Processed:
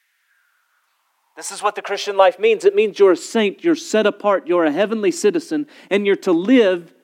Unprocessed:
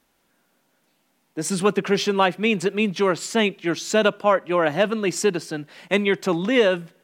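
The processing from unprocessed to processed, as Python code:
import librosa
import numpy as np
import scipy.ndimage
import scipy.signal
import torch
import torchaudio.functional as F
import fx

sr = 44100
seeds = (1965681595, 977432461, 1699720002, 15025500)

y = fx.filter_sweep_highpass(x, sr, from_hz=1900.0, to_hz=280.0, start_s=0.05, end_s=3.42, q=4.1)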